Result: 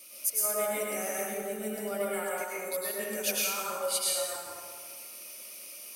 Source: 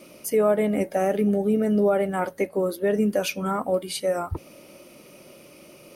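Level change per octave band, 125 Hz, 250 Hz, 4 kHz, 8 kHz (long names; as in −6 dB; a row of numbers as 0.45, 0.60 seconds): below −20 dB, −18.0 dB, +1.5 dB, +8.0 dB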